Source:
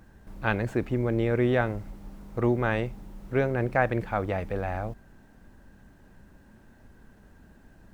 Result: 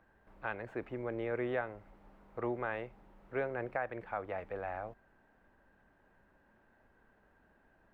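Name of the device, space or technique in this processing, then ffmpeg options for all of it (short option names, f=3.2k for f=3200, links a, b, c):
DJ mixer with the lows and highs turned down: -filter_complex "[0:a]acrossover=split=400 2800:gain=0.224 1 0.126[a][b][c];[a][b][c]amix=inputs=3:normalize=0,alimiter=limit=-17.5dB:level=0:latency=1:release=360,volume=-6dB"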